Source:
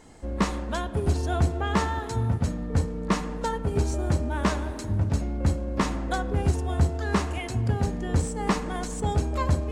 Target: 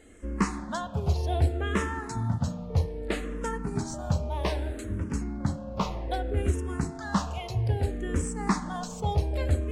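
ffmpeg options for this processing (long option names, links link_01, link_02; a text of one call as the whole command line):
ffmpeg -i in.wav -filter_complex "[0:a]asettb=1/sr,asplit=3[link_01][link_02][link_03];[link_01]atrim=end=5.234[link_04];[link_02]atrim=start=5.23:end=6.37,asetpts=PTS-STARTPTS,afade=type=in:duration=0.004:curve=qsin,afade=type=out:start_time=1.136:duration=0.004:curve=qsin,equalizer=frequency=8000:width=0.67:gain=-5[link_05];[link_03]atrim=start=6.366[link_06];[link_04][link_05]acrossfade=duration=0.004:curve1=hsin:curve2=qsin[link_07];[link_07][link_06]acrossfade=duration=0.004:curve1=qsin:curve2=hsin,asplit=2[link_08][link_09];[link_09]afreqshift=-0.63[link_10];[link_08][link_10]amix=inputs=2:normalize=1" out.wav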